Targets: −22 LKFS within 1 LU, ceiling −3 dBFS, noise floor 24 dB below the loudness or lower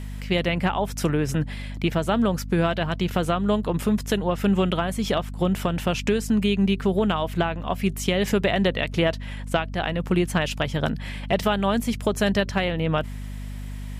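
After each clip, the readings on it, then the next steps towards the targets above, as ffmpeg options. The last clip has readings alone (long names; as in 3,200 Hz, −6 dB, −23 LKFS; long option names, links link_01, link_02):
mains hum 50 Hz; hum harmonics up to 250 Hz; level of the hum −31 dBFS; integrated loudness −24.0 LKFS; sample peak −8.5 dBFS; target loudness −22.0 LKFS
→ -af "bandreject=frequency=50:width_type=h:width=6,bandreject=frequency=100:width_type=h:width=6,bandreject=frequency=150:width_type=h:width=6,bandreject=frequency=200:width_type=h:width=6,bandreject=frequency=250:width_type=h:width=6"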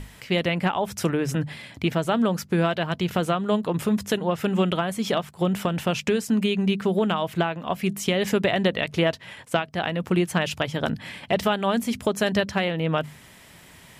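mains hum none found; integrated loudness −24.5 LKFS; sample peak −7.5 dBFS; target loudness −22.0 LKFS
→ -af "volume=2.5dB"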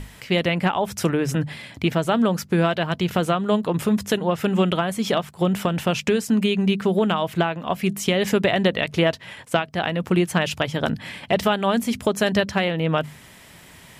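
integrated loudness −22.0 LKFS; sample peak −5.0 dBFS; background noise floor −47 dBFS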